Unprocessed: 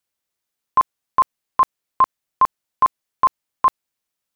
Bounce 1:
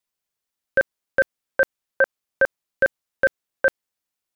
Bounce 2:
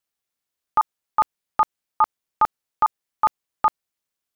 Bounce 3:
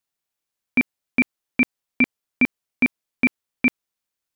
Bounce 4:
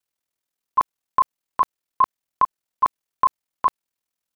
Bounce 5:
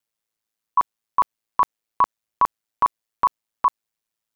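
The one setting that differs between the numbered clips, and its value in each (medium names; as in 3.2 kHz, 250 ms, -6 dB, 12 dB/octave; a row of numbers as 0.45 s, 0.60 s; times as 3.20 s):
ring modulator, frequency: 510 Hz, 180 Hz, 1.3 kHz, 20 Hz, 55 Hz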